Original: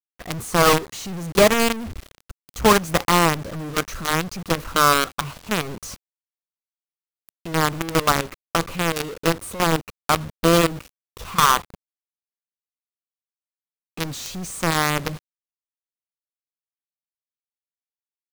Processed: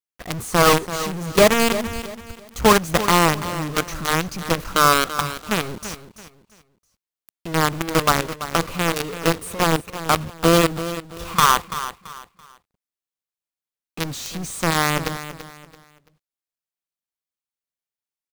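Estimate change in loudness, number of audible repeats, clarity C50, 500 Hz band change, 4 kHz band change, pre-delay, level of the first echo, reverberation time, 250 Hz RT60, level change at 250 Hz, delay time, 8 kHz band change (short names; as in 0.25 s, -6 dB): +1.0 dB, 3, none, +1.5 dB, +1.0 dB, none, -12.5 dB, none, none, +1.0 dB, 0.335 s, +1.0 dB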